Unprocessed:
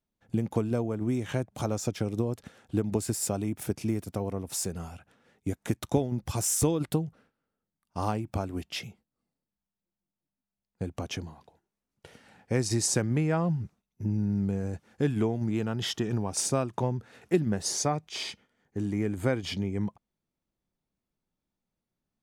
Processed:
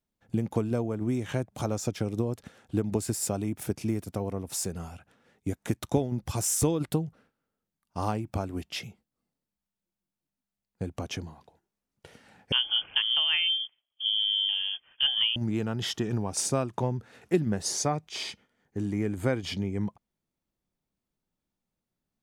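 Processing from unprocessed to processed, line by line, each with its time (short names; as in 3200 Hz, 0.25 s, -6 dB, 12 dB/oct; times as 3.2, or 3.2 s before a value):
12.52–15.36 inverted band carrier 3300 Hz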